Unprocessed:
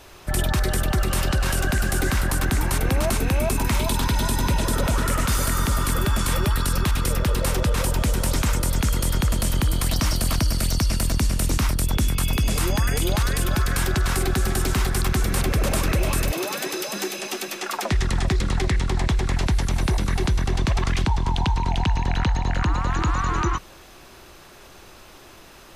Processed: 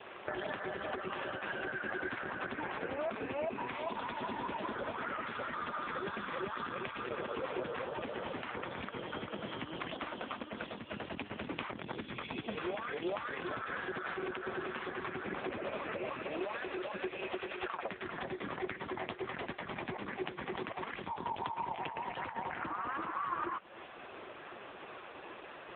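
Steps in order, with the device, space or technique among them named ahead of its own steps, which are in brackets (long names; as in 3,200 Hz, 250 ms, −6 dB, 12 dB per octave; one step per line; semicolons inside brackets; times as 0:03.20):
0:09.93–0:10.79: elliptic band-pass filter 210–4,600 Hz, stop band 40 dB
voicemail (band-pass filter 310–2,900 Hz; downward compressor 6 to 1, threshold −38 dBFS, peak gain reduction 14.5 dB; level +5.5 dB; AMR narrowband 4.75 kbit/s 8,000 Hz)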